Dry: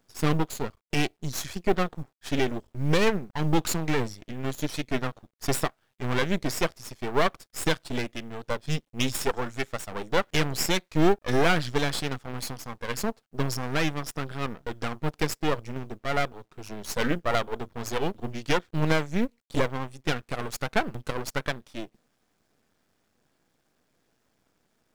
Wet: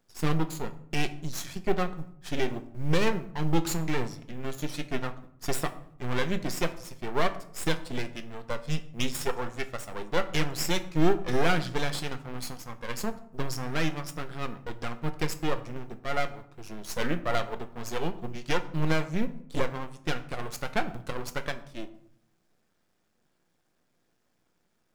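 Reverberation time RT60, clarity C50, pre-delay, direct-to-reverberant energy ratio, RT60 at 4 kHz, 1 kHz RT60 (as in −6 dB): 0.65 s, 14.5 dB, 6 ms, 8.0 dB, 0.40 s, 0.60 s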